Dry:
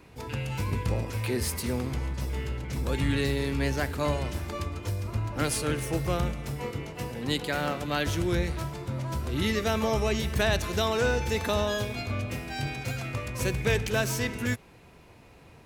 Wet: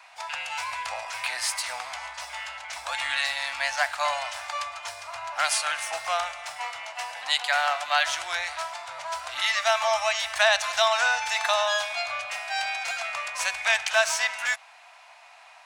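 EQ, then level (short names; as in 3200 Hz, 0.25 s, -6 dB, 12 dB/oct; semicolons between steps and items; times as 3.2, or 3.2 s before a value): polynomial smoothing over 9 samples; elliptic high-pass 680 Hz, stop band 40 dB; +8.5 dB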